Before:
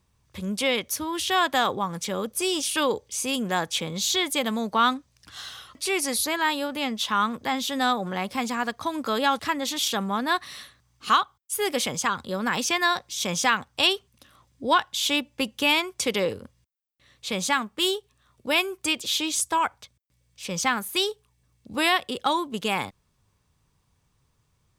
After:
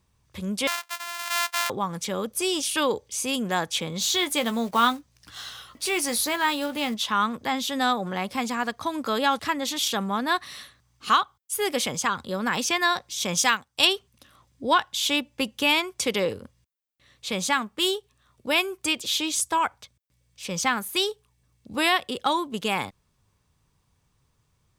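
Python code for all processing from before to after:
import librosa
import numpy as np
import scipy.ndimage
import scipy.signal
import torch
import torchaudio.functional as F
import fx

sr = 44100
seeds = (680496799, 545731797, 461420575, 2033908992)

y = fx.chain(x, sr, fx.sample_sort(block=128),
    fx.highpass(hz=910.0, slope=24), at=(0.67, 1.7))
y = fx.chain(y, sr, fx.block_float(bits=5),
    fx.doubler(ms=17.0, db=-10.5), at=(3.99, 6.95))
y = fx.chain(y, sr, fx.high_shelf(hz=3600.0, db=9.0),
    fx.upward_expand(threshold_db=-40.0, expansion=1.5), at=(13.37, 13.85))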